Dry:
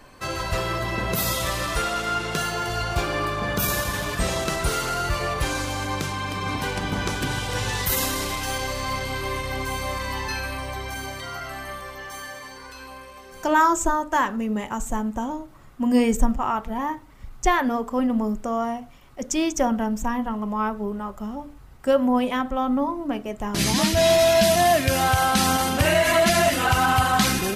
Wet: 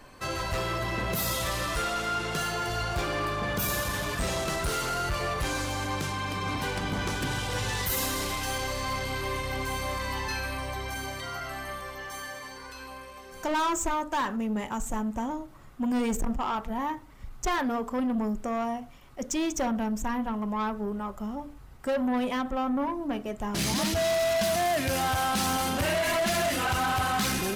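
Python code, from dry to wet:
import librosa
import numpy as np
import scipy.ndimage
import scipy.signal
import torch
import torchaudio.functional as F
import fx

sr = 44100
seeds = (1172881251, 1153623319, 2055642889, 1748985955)

y = 10.0 ** (-21.5 / 20.0) * np.tanh(x / 10.0 ** (-21.5 / 20.0))
y = y * 10.0 ** (-2.0 / 20.0)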